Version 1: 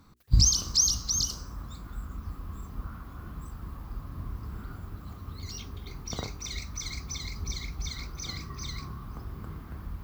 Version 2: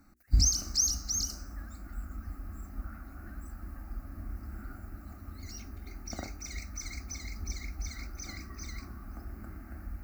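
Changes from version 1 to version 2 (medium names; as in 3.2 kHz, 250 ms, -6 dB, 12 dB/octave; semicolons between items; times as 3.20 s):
speech +11.5 dB; master: add static phaser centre 680 Hz, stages 8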